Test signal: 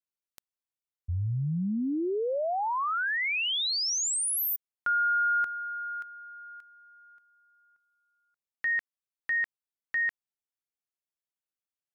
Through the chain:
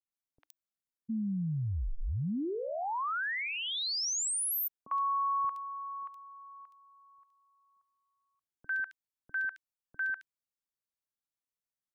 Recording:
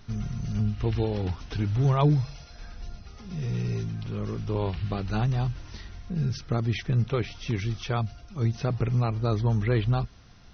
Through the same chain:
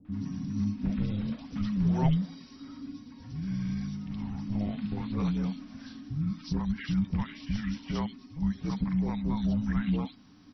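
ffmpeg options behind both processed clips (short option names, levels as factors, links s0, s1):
-filter_complex "[0:a]afreqshift=-310,acrossover=split=550|2700[s0][s1][s2];[s1]adelay=50[s3];[s2]adelay=120[s4];[s0][s3][s4]amix=inputs=3:normalize=0,volume=0.668"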